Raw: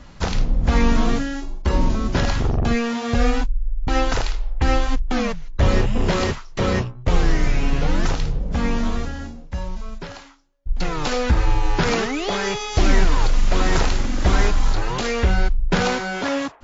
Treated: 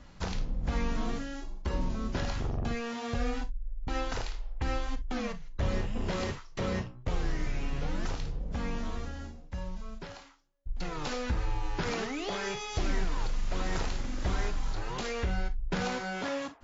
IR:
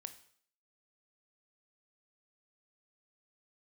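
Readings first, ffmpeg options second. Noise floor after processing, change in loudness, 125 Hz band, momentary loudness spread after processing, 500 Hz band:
-50 dBFS, -13.0 dB, -13.0 dB, 8 LU, -12.5 dB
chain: -filter_complex "[0:a]acompressor=threshold=-24dB:ratio=1.5[a];[1:a]atrim=start_sample=2205,atrim=end_sample=3087[b];[a][b]afir=irnorm=-1:irlink=0,volume=-4.5dB"

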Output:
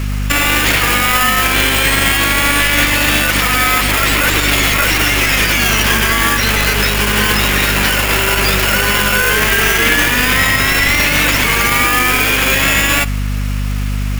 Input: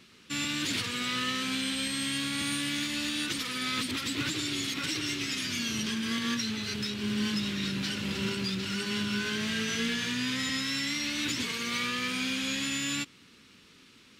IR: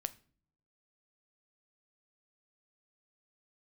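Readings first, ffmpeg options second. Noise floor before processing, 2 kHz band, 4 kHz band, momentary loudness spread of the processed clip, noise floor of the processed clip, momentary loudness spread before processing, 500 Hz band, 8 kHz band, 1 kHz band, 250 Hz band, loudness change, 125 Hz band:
-57 dBFS, +22.5 dB, +15.5 dB, 2 LU, -17 dBFS, 2 LU, +21.5 dB, +18.5 dB, +24.5 dB, +11.0 dB, +19.0 dB, +21.0 dB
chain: -filter_complex "[0:a]acrossover=split=4100[a][b];[b]acompressor=threshold=-48dB:ratio=4:attack=1:release=60[c];[a][c]amix=inputs=2:normalize=0,highpass=220,acrossover=split=600 2600:gain=0.0794 1 0.141[d][e][f];[d][e][f]amix=inputs=3:normalize=0,asplit=2[g][h];[h]acrusher=samples=22:mix=1:aa=0.000001,volume=-8dB[i];[g][i]amix=inputs=2:normalize=0,aeval=exprs='val(0)+0.00447*(sin(2*PI*50*n/s)+sin(2*PI*2*50*n/s)/2+sin(2*PI*3*50*n/s)/3+sin(2*PI*4*50*n/s)/4+sin(2*PI*5*50*n/s)/5)':c=same,aexciter=amount=3.1:drive=7.2:freq=5.3k,asplit=2[j][k];[1:a]atrim=start_sample=2205,asetrate=31752,aresample=44100,highshelf=f=8.4k:g=10.5[l];[k][l]afir=irnorm=-1:irlink=0,volume=-8.5dB[m];[j][m]amix=inputs=2:normalize=0,alimiter=level_in=28.5dB:limit=-1dB:release=50:level=0:latency=1,volume=-1dB"

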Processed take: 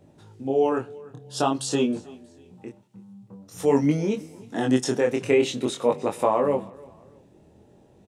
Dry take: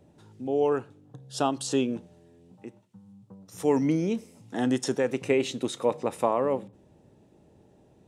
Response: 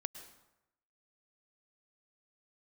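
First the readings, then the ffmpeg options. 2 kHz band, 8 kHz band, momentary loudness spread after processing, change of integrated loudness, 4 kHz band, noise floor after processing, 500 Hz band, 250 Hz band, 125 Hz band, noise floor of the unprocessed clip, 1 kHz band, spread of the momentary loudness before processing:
+3.5 dB, +3.5 dB, 21 LU, +3.5 dB, +3.5 dB, -56 dBFS, +3.5 dB, +3.0 dB, +4.0 dB, -59 dBFS, +3.5 dB, 14 LU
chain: -af "aecho=1:1:317|634:0.0708|0.0255,flanger=delay=19.5:depth=6:speed=0.48,volume=6.5dB"

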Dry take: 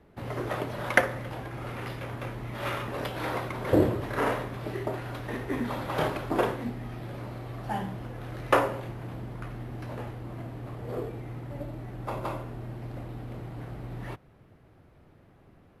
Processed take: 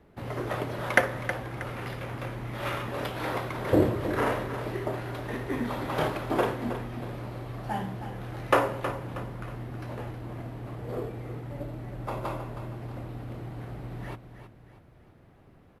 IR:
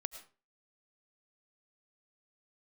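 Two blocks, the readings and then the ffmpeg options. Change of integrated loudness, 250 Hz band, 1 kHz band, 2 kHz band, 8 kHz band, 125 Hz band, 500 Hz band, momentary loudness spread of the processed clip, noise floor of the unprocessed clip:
+0.5 dB, +0.5 dB, +0.5 dB, +0.5 dB, +0.5 dB, +0.5 dB, +0.5 dB, 14 LU, -58 dBFS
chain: -af "aecho=1:1:318|636|954|1272:0.299|0.119|0.0478|0.0191"

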